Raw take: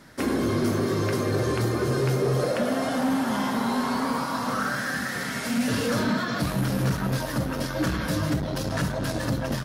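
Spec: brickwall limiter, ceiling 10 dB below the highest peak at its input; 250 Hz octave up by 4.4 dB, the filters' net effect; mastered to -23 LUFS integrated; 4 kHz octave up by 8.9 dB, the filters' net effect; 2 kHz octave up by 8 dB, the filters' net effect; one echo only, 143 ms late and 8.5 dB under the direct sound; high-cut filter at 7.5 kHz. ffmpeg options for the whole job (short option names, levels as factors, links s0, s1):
-af "lowpass=7500,equalizer=f=250:t=o:g=5,equalizer=f=2000:t=o:g=8.5,equalizer=f=4000:t=o:g=9,alimiter=limit=0.119:level=0:latency=1,aecho=1:1:143:0.376,volume=1.33"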